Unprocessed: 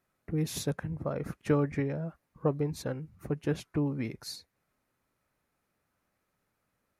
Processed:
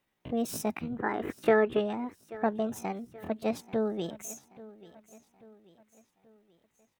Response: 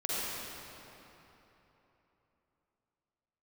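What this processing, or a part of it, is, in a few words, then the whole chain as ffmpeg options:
chipmunk voice: -filter_complex "[0:a]asettb=1/sr,asplit=3[a][b][c];[a]atrim=end=0.984[d];[b]atrim=start=0.98:end=1.81,asetpts=PTS-STARTPTS,afade=t=in:d=0.004:c=qsin,afade=t=out:st=0.826:d=0.004:c=qsin,equalizer=f=125:t=o:w=1:g=-5,equalizer=f=250:t=o:w=1:g=9,equalizer=f=500:t=o:w=1:g=-4,equalizer=f=1k:t=o:w=1:g=11,equalizer=f=2k:t=o:w=1:g=-3,equalizer=f=4k:t=o:w=1:g=-6,equalizer=f=8k:t=o:w=1:g=-4[e];[c]atrim=start=1.806[f];[d][e]acrossfade=d=0.004:c1=hsin:c2=qsin[g];[g][f]acrossfade=d=0.004:c1=qsin:c2=hsin,aecho=1:1:834|1668|2502|3336:0.112|0.0527|0.0248|0.0116,asetrate=66075,aresample=44100,atempo=0.66742"

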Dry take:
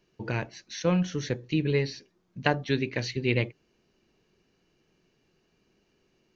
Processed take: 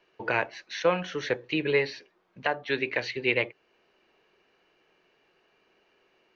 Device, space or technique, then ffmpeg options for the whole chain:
DJ mixer with the lows and highs turned down: -filter_complex "[0:a]acrossover=split=440 3400:gain=0.1 1 0.126[a][b][c];[a][b][c]amix=inputs=3:normalize=0,alimiter=limit=-20.5dB:level=0:latency=1:release=460,volume=9dB"

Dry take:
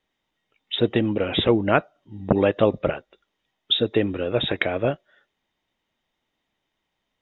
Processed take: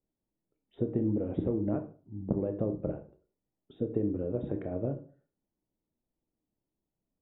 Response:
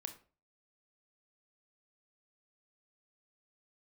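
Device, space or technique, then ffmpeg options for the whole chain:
television next door: -filter_complex "[0:a]acompressor=threshold=-19dB:ratio=6,lowpass=400[a];[1:a]atrim=start_sample=2205[b];[a][b]afir=irnorm=-1:irlink=0"

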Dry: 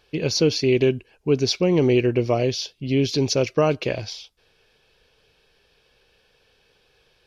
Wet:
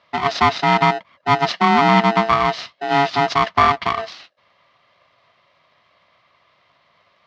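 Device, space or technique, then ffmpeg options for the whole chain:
ring modulator pedal into a guitar cabinet: -filter_complex "[0:a]aeval=exprs='val(0)*sgn(sin(2*PI*560*n/s))':c=same,highpass=110,equalizer=f=460:t=q:w=4:g=-4,equalizer=f=690:t=q:w=4:g=9,equalizer=f=1.2k:t=q:w=4:g=9,equalizer=f=2k:t=q:w=4:g=5,lowpass=f=4.5k:w=0.5412,lowpass=f=4.5k:w=1.3066,asettb=1/sr,asplit=3[a][b][c];[a]atrim=end=1.514[d];[b]atrim=start=1.51:end=2.27,asetpts=PTS-STARTPTS,afade=t=in:d=0.004:c=qsin,afade=t=out:st=0.756:d=0.004:c=qsin,lowshelf=f=150:t=q:w=3:g=-7[e];[c]atrim=start=2.266[f];[d][e]acrossfade=d=0.004:c1=hsin:c2=qsin[g];[g][f]acrossfade=d=0.004:c1=qsin:c2=hsin"

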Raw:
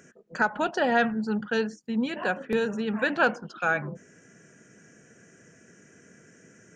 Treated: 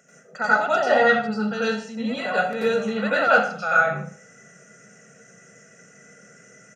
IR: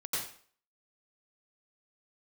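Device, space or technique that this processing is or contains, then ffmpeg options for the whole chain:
microphone above a desk: -filter_complex "[0:a]aecho=1:1:1.5:0.79[a];[1:a]atrim=start_sample=2205[b];[a][b]afir=irnorm=-1:irlink=0,highpass=180"

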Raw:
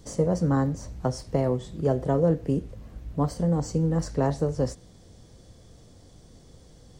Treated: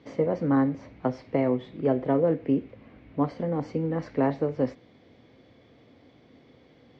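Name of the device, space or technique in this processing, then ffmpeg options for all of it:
kitchen radio: -af "highpass=170,equalizer=f=180:t=q:w=4:g=-7,equalizer=f=260:t=q:w=4:g=6,equalizer=f=2.2k:t=q:w=4:g=10,lowpass=f=3.5k:w=0.5412,lowpass=f=3.5k:w=1.3066"

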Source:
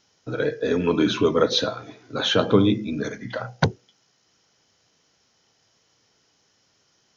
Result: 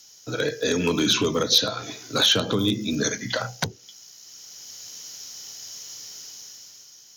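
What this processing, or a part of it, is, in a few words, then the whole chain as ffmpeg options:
FM broadcast chain: -filter_complex "[0:a]asettb=1/sr,asplit=3[a][b][c];[a]atrim=end=2.484[d];[b]atrim=start=2.48:end=3.12,asetpts=PTS-STARTPTS,afade=t=in:d=0.004:c=qsin,afade=t=out:st=0.636:d=0.004:c=qsin,equalizer=f=2.3k:t=o:w=0.27:g=-6.5[e];[c]atrim=start=3.116[f];[d][e]acrossfade=d=0.004:c1=hsin:c2=qsin[g];[g][f]acrossfade=d=0.004:c1=qsin:c2=hsin,highpass=f=52:w=0.5412,highpass=f=52:w=1.3066,dynaudnorm=f=150:g=11:m=11dB,acrossover=split=250|5500[h][i][j];[h]acompressor=threshold=-20dB:ratio=4[k];[i]acompressor=threshold=-20dB:ratio=4[l];[j]acompressor=threshold=-50dB:ratio=4[m];[k][l][m]amix=inputs=3:normalize=0,aemphasis=mode=production:type=75fm,alimiter=limit=-12dB:level=0:latency=1:release=269,asoftclip=type=hard:threshold=-14.5dB,lowpass=f=15k:w=0.5412,lowpass=f=15k:w=1.3066,aemphasis=mode=production:type=75fm"

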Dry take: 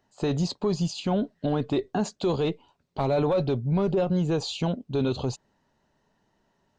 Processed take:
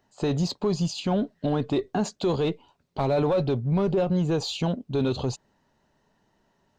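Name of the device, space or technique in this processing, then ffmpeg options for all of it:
parallel distortion: -filter_complex "[0:a]asplit=2[a][b];[b]asoftclip=type=hard:threshold=-32dB,volume=-12dB[c];[a][c]amix=inputs=2:normalize=0"

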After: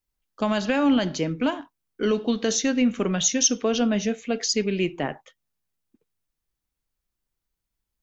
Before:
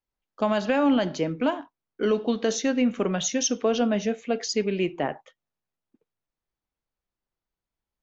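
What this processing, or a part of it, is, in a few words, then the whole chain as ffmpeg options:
smiley-face EQ: -af "lowshelf=f=87:g=7,equalizer=f=670:t=o:w=1.6:g=-4.5,highshelf=f=5.4k:g=7.5,volume=2dB"

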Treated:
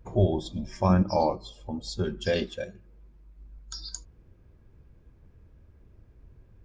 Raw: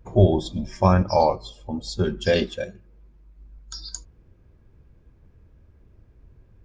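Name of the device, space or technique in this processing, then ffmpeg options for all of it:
parallel compression: -filter_complex "[0:a]asplit=2[a][b];[b]acompressor=threshold=-34dB:ratio=6,volume=0dB[c];[a][c]amix=inputs=2:normalize=0,asettb=1/sr,asplit=3[d][e][f];[d]atrim=end=0.894[g];[e]atrim=start=0.89:end=1.44,asetpts=PTS-STARTPTS,afade=t=in:d=0.004:c=qsin,afade=t=out:st=0.546:d=0.004:c=qsin,equalizer=f=200:t=o:w=0.33:g=10,equalizer=f=315:t=o:w=0.33:g=9,equalizer=f=2k:t=o:w=0.33:g=-4[h];[f]atrim=start=1.436[i];[g][h]acrossfade=d=0.004:c1=hsin:c2=qsin[j];[j][i]acrossfade=d=0.004:c1=qsin:c2=hsin,volume=-7.5dB"

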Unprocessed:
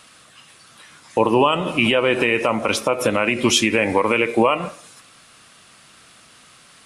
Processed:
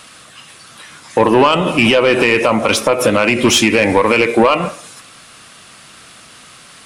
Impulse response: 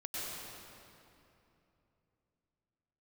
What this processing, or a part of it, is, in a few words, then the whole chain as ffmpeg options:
saturation between pre-emphasis and de-emphasis: -af "highshelf=f=7k:g=11.5,asoftclip=type=tanh:threshold=-12dB,highshelf=f=7k:g=-11.5,volume=8.5dB"

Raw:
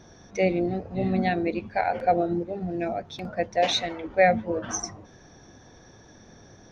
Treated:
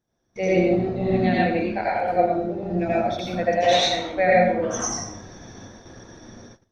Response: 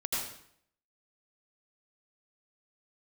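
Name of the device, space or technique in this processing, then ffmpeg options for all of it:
speakerphone in a meeting room: -filter_complex "[1:a]atrim=start_sample=2205[a];[0:a][a]afir=irnorm=-1:irlink=0,dynaudnorm=f=170:g=5:m=9.5dB,agate=range=-21dB:threshold=-37dB:ratio=16:detection=peak,volume=-5.5dB" -ar 48000 -c:a libopus -b:a 32k

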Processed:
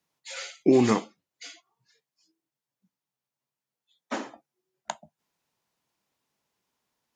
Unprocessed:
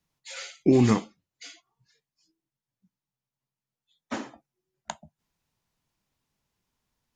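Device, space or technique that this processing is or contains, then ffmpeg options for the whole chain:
filter by subtraction: -filter_complex "[0:a]asplit=2[a][b];[b]lowpass=480,volume=-1[c];[a][c]amix=inputs=2:normalize=0,volume=1dB"

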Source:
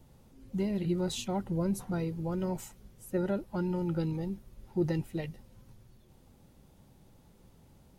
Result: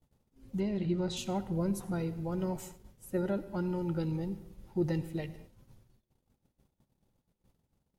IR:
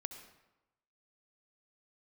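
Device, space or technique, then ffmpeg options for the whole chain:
keyed gated reverb: -filter_complex "[0:a]asettb=1/sr,asplit=3[a][b][c];[a]atrim=end=0.604[d];[b]atrim=start=0.6:end=1.17,asetpts=PTS-STARTPTS,afade=t=in:d=0.004:c=qsin,afade=t=out:st=0.566:d=0.004:c=qsin,lowpass=5.5k[e];[c]atrim=start=1.166[f];[d][e]acrossfade=d=0.004:c1=hsin:c2=qsin[g];[g][f]acrossfade=d=0.004:c1=qsin:c2=hsin,agate=range=-19dB:threshold=-56dB:ratio=16:detection=peak,asplit=3[h][i][j];[1:a]atrim=start_sample=2205[k];[i][k]afir=irnorm=-1:irlink=0[l];[j]apad=whole_len=352127[m];[l][m]sidechaingate=range=-33dB:threshold=-52dB:ratio=16:detection=peak,volume=1.5dB[n];[h][n]amix=inputs=2:normalize=0,volume=-6.5dB"

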